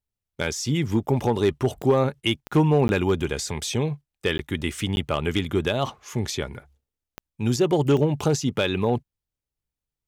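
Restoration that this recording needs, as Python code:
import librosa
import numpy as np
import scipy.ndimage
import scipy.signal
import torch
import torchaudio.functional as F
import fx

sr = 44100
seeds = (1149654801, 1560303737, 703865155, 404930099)

y = fx.fix_declip(x, sr, threshold_db=-11.5)
y = fx.fix_declick_ar(y, sr, threshold=10.0)
y = fx.fix_interpolate(y, sr, at_s=(2.88, 4.38, 4.96), length_ms=11.0)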